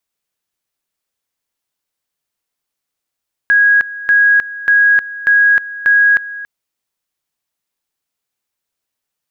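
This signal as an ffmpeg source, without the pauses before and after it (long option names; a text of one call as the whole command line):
ffmpeg -f lavfi -i "aevalsrc='pow(10,(-6.5-17*gte(mod(t,0.59),0.31))/20)*sin(2*PI*1650*t)':duration=2.95:sample_rate=44100" out.wav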